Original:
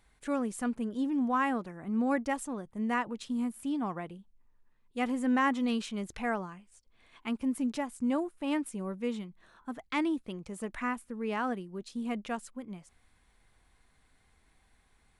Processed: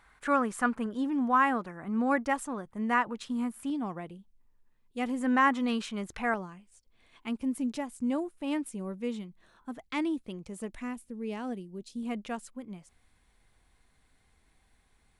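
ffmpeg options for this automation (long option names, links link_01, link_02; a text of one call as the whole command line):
ffmpeg -i in.wav -af "asetnsamples=nb_out_samples=441:pad=0,asendcmd='0.86 equalizer g 6.5;3.7 equalizer g -3.5;5.21 equalizer g 5.5;6.34 equalizer g -3.5;10.7 equalizer g -12.5;12.03 equalizer g -2',equalizer=frequency=1300:width_type=o:width=1.6:gain=14" out.wav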